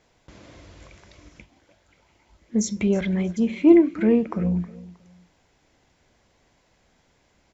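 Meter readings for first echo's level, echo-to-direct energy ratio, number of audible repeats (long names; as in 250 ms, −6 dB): −19.0 dB, −18.5 dB, 2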